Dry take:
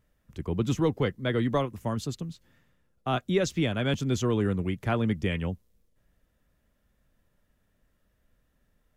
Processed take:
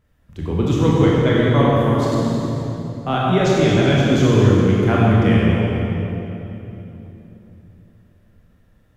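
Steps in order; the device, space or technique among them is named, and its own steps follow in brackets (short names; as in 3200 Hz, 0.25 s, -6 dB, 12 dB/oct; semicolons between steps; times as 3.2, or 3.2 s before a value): swimming-pool hall (reverb RT60 3.4 s, pre-delay 22 ms, DRR -6 dB; high shelf 4900 Hz -6.5 dB); gain +5 dB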